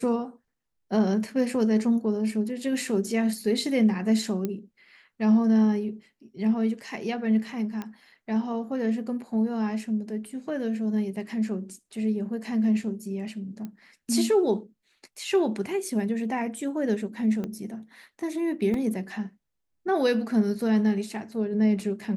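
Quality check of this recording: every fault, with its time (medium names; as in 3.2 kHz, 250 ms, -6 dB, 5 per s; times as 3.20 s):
4.45 s: pop -16 dBFS
7.82 s: pop -21 dBFS
13.65 s: pop -24 dBFS
17.44 s: pop -21 dBFS
18.74 s: dropout 2.3 ms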